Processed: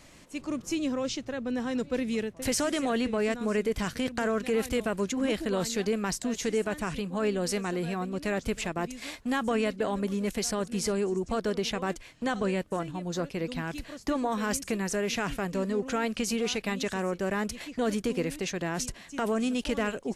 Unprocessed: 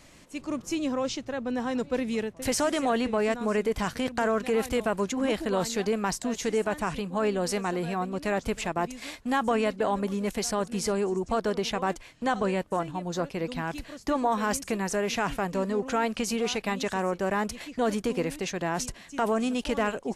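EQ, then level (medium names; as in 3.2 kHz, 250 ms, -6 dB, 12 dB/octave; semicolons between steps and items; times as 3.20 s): dynamic bell 870 Hz, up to -7 dB, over -42 dBFS, Q 1.3; 0.0 dB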